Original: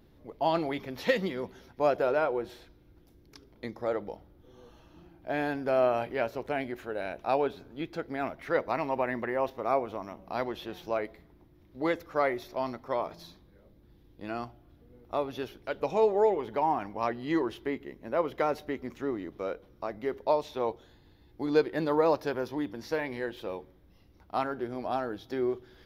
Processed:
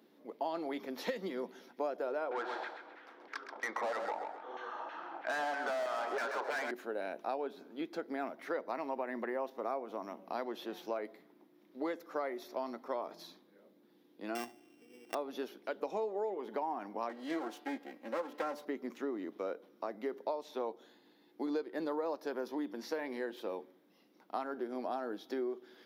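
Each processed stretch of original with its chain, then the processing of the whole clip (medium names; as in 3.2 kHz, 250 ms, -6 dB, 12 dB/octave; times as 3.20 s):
2.31–6.71 s: LFO band-pass saw down 3.1 Hz 730–2000 Hz + overdrive pedal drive 34 dB, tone 2.9 kHz, clips at -18.5 dBFS + feedback delay 131 ms, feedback 28%, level -8 dB
14.35–15.15 s: sorted samples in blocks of 16 samples + bass shelf 140 Hz +9.5 dB + comb 2.6 ms, depth 34%
17.09–18.65 s: comb filter that takes the minimum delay 3.7 ms + bass shelf 220 Hz -6.5 dB + de-hum 146.5 Hz, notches 36
whole clip: steep high-pass 210 Hz 36 dB/octave; dynamic bell 2.6 kHz, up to -5 dB, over -52 dBFS, Q 1.4; compression 6:1, threshold -32 dBFS; trim -1.5 dB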